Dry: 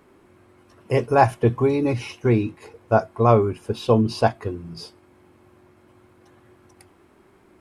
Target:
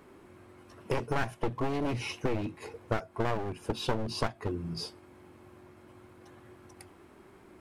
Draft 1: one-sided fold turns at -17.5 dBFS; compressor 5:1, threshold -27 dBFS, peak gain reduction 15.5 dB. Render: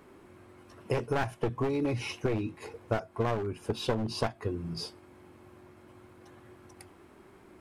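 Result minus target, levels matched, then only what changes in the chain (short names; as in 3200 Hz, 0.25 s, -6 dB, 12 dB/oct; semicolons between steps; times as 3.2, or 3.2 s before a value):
one-sided fold: distortion -8 dB
change: one-sided fold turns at -24 dBFS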